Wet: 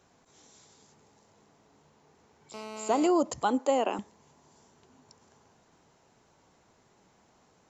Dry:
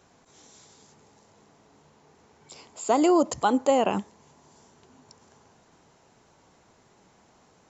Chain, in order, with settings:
0:02.54–0:03.07: phone interference −37 dBFS
0:03.59–0:03.99: Butterworth high-pass 240 Hz
level −4.5 dB

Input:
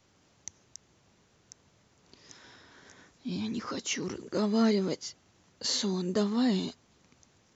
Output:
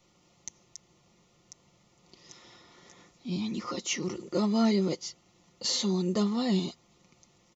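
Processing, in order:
Butterworth band-reject 1,600 Hz, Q 4.1
comb filter 5.7 ms, depth 52%

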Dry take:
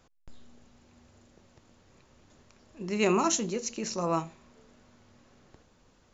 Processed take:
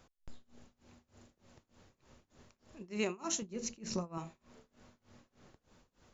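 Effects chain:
0:03.42–0:04.18: bass and treble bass +10 dB, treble −3 dB
downward compressor 6 to 1, threshold −30 dBFS, peak gain reduction 9.5 dB
amplitude tremolo 3.3 Hz, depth 95%

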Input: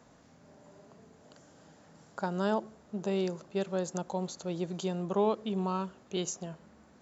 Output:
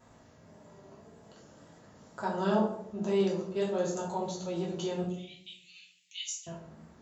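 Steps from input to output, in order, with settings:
0:05.02–0:06.47: Butterworth high-pass 2,100 Hz 72 dB per octave
tape wow and flutter 47 cents
convolution reverb RT60 0.70 s, pre-delay 3 ms, DRR −5 dB
level −4.5 dB

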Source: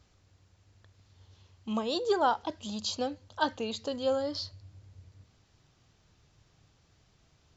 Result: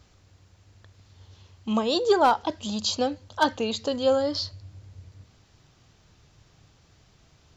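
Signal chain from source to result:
hard clipping −18 dBFS, distortion −24 dB
level +7 dB

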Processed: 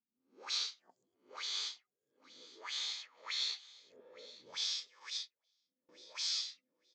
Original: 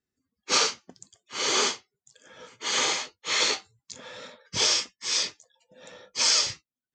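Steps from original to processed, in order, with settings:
peak hold with a rise ahead of every peak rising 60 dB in 0.44 s
dynamic equaliser 3,000 Hz, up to −8 dB, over −42 dBFS, Q 2.8
envelope filter 220–3,700 Hz, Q 5.1, up, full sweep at −24.5 dBFS
repeating echo 870 ms, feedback 17%, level −19 dB
0:05.10–0:05.89: expander for the loud parts 2.5 to 1, over −49 dBFS
level −4.5 dB

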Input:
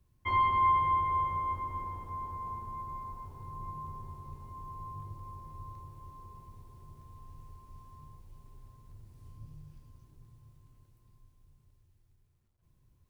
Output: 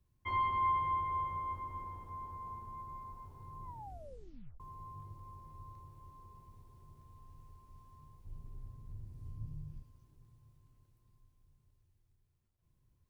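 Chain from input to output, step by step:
0:03.64: tape stop 0.96 s
0:08.25–0:09.83: low-shelf EQ 390 Hz +11.5 dB
level −6 dB

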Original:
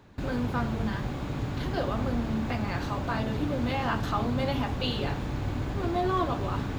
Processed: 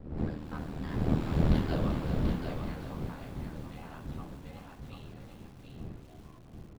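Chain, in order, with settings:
fade-out on the ending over 1.40 s
wind on the microphone 190 Hz −24 dBFS
source passing by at 0:01.42, 16 m/s, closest 4 metres
notch filter 6,400 Hz, Q 8.8
hum removal 66.96 Hz, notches 36
ring modulation 39 Hz
single-tap delay 736 ms −5.5 dB
feedback echo at a low word length 385 ms, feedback 55%, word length 9 bits, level −9 dB
level +1.5 dB

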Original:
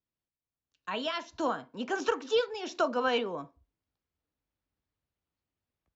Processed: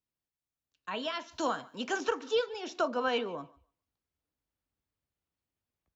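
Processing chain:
0:01.31–0:01.98: high-shelf EQ 2,400 Hz +10.5 dB
feedback echo with a high-pass in the loop 145 ms, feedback 17%, high-pass 360 Hz, level −22 dB
level −2 dB

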